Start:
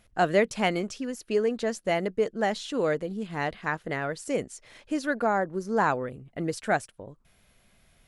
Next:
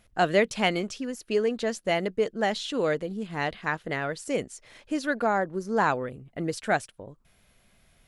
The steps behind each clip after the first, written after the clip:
dynamic equaliser 3,400 Hz, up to +5 dB, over −45 dBFS, Q 1.2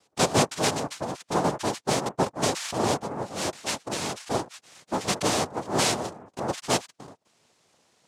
cochlear-implant simulation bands 2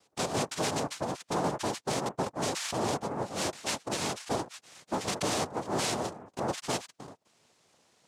brickwall limiter −19 dBFS, peak gain reduction 10.5 dB
level −1.5 dB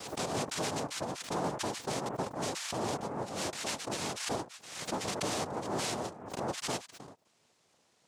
background raised ahead of every attack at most 62 dB per second
level −4 dB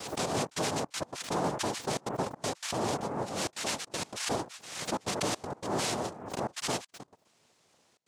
gate pattern "xxxxx.xxx.x.xxxx" 160 BPM −24 dB
level +3 dB

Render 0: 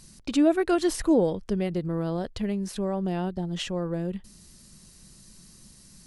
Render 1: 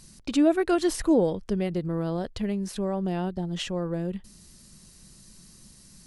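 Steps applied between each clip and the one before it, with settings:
no processing that can be heard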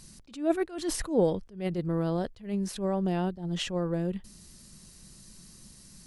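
level that may rise only so fast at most 150 dB per second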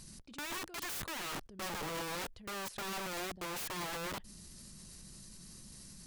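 output level in coarse steps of 19 dB
wrap-around overflow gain 40 dB
level +4.5 dB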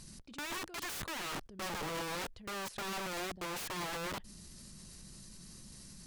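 high-shelf EQ 11,000 Hz −5.5 dB
level +1 dB

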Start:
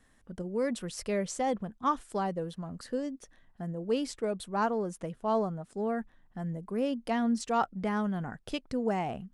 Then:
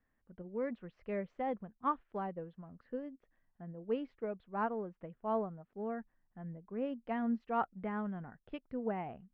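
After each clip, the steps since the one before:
low-pass filter 2,500 Hz 24 dB per octave
expander for the loud parts 1.5 to 1, over −44 dBFS
level −4.5 dB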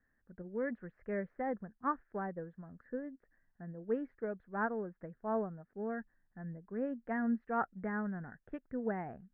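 drawn EQ curve 400 Hz 0 dB, 1,100 Hz −4 dB, 1,700 Hz +8 dB, 2,900 Hz −19 dB
level +1 dB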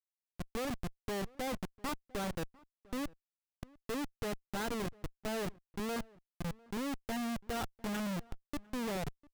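comparator with hysteresis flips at −39.5 dBFS
slap from a distant wall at 120 metres, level −24 dB
level +3.5 dB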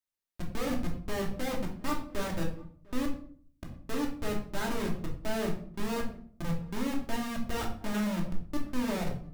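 rectangular room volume 570 cubic metres, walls furnished, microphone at 2.7 metres

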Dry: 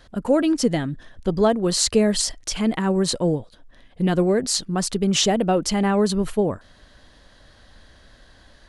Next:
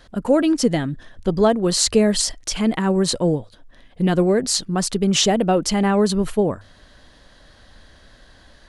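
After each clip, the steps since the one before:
mains-hum notches 50/100 Hz
level +2 dB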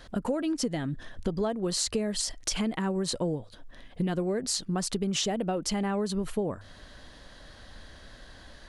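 downward compressor 6 to 1, threshold −27 dBFS, peak gain reduction 15 dB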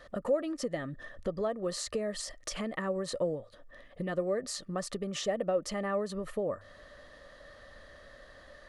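hollow resonant body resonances 570/1,200/1,800 Hz, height 15 dB, ringing for 25 ms
level −9 dB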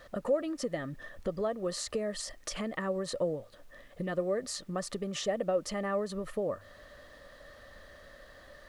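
background noise pink −68 dBFS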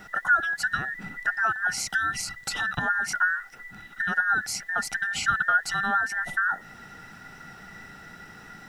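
frequency inversion band by band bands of 2,000 Hz
level +7 dB

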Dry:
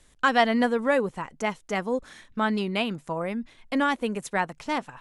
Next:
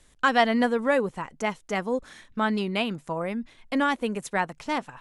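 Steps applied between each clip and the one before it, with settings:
no processing that can be heard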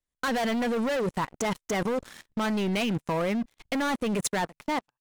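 fade-out on the ending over 0.75 s
leveller curve on the samples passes 5
output level in coarse steps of 21 dB
level −5.5 dB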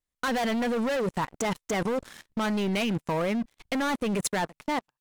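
pitch vibrato 3.1 Hz 39 cents

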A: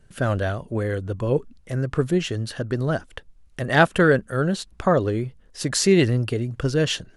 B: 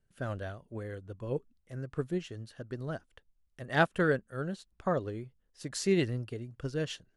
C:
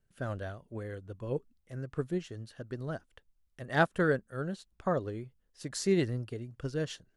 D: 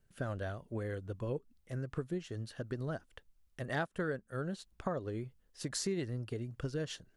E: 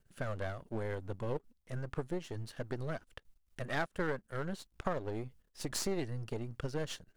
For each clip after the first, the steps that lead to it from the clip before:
expander for the loud parts 1.5 to 1, over −35 dBFS; level −9 dB
dynamic equaliser 2,700 Hz, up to −5 dB, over −53 dBFS, Q 2.2
downward compressor 4 to 1, threshold −38 dBFS, peak gain reduction 15.5 dB; level +3.5 dB
gain on one half-wave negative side −12 dB; level +4 dB

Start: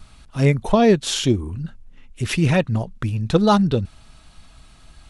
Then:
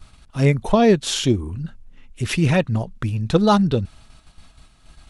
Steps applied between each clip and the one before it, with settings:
noise gate −45 dBFS, range −6 dB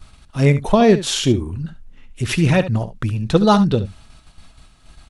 single-tap delay 70 ms −13.5 dB
level +2 dB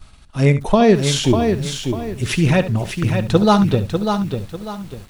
feedback echo at a low word length 596 ms, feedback 35%, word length 7 bits, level −6 dB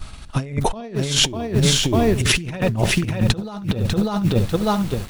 in parallel at 0 dB: brickwall limiter −11 dBFS, peak gain reduction 9.5 dB
on the sum: compressor whose output falls as the input rises −17 dBFS, ratio −0.5
level −2 dB

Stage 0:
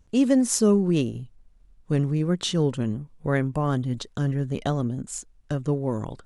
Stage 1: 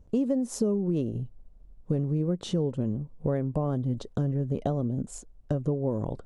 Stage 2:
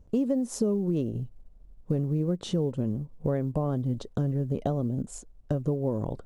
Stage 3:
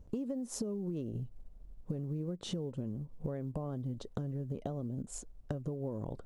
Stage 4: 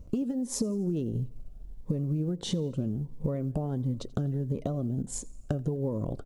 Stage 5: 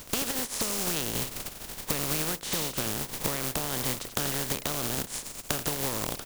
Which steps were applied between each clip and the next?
drawn EQ curve 350 Hz 0 dB, 560 Hz +3 dB, 1,700 Hz −13 dB; downward compressor, threshold −28 dBFS, peak gain reduction 13 dB; level +4 dB
floating-point word with a short mantissa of 6 bits
downward compressor 6 to 1, threshold −35 dBFS, peak gain reduction 13 dB
repeating echo 85 ms, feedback 57%, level −23.5 dB; phaser whose notches keep moving one way rising 1.5 Hz; level +8 dB
compressing power law on the bin magnitudes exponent 0.26

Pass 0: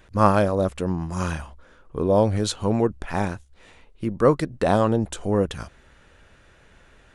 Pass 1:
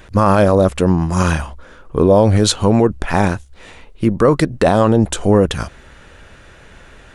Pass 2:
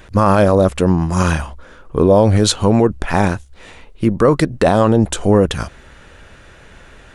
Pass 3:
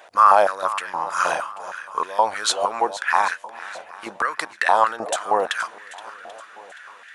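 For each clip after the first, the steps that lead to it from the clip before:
boost into a limiter +12.5 dB; level −1 dB
no processing that can be heard
feedback echo with a long and a short gap by turns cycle 786 ms, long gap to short 1.5 to 1, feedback 33%, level −15 dB; high-pass on a step sequencer 6.4 Hz 690–1,800 Hz; level −5 dB

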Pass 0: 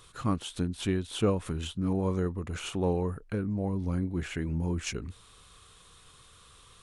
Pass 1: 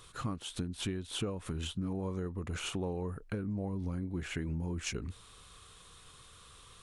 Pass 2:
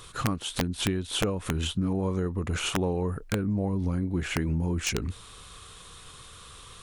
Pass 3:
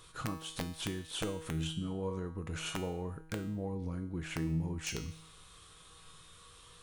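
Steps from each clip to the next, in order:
downward compressor 12 to 1, threshold −32 dBFS, peak gain reduction 12.5 dB
wrap-around overflow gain 25 dB; level +8.5 dB
tuned comb filter 160 Hz, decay 0.72 s, harmonics all, mix 80%; level +2 dB

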